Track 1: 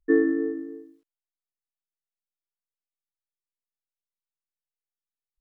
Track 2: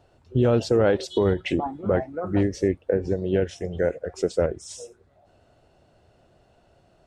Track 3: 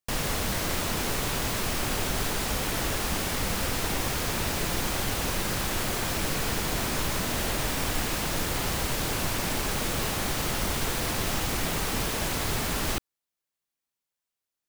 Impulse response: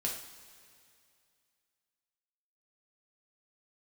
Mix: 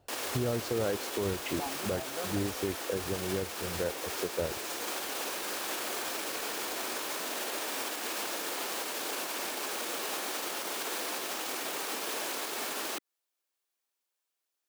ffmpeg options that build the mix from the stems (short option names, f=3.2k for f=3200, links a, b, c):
-filter_complex "[1:a]volume=-7dB[a];[2:a]alimiter=level_in=2.5dB:limit=-24dB:level=0:latency=1:release=114,volume=-2.5dB,highpass=f=310:w=0.5412,highpass=f=310:w=1.3066,bandreject=f=2k:w=24,volume=2.5dB[b];[a][b]amix=inputs=2:normalize=0,alimiter=limit=-20.5dB:level=0:latency=1:release=464"